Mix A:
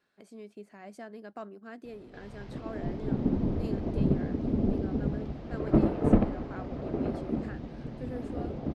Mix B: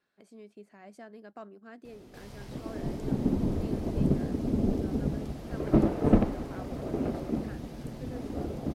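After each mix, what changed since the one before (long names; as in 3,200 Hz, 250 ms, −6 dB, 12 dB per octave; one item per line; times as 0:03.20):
speech −3.5 dB
background: remove high-frequency loss of the air 200 metres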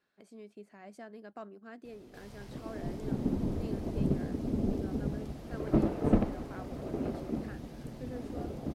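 background −4.0 dB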